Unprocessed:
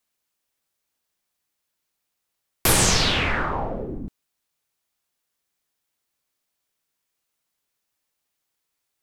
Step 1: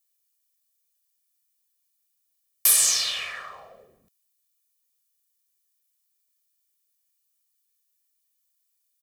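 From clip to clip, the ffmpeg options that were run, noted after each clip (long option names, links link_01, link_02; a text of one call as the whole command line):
ffmpeg -i in.wav -af "aderivative,aecho=1:1:1.7:0.77" out.wav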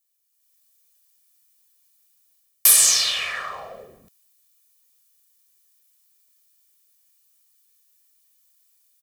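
ffmpeg -i in.wav -af "dynaudnorm=framelen=290:gausssize=3:maxgain=11dB" out.wav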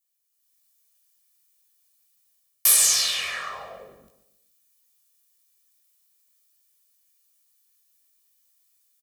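ffmpeg -i in.wav -af "flanger=delay=16:depth=7:speed=0.44,aecho=1:1:142|284|426|568:0.211|0.0824|0.0321|0.0125" out.wav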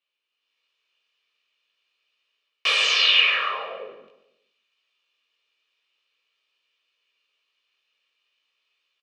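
ffmpeg -i in.wav -af "highpass=410,equalizer=frequency=450:width_type=q:width=4:gain=5,equalizer=frequency=730:width_type=q:width=4:gain=-8,equalizer=frequency=1800:width_type=q:width=4:gain=-5,equalizer=frequency=2700:width_type=q:width=4:gain=10,lowpass=frequency=3400:width=0.5412,lowpass=frequency=3400:width=1.3066,volume=8.5dB" out.wav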